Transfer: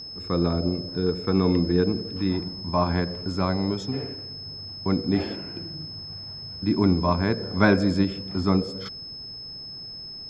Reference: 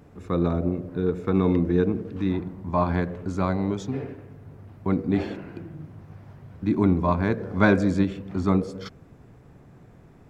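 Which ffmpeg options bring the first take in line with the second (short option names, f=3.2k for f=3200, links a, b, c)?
-af "bandreject=f=5.2k:w=30"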